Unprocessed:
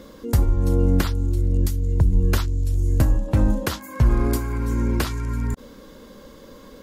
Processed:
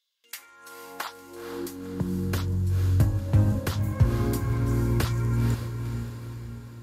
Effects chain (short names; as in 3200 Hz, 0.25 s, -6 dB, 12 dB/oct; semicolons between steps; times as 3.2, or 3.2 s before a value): gate with hold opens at -31 dBFS; vocal rider 2 s; high-pass sweep 3300 Hz -> 94 Hz, 0.1–2.49; diffused feedback echo 0.491 s, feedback 52%, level -7.5 dB; gain -6.5 dB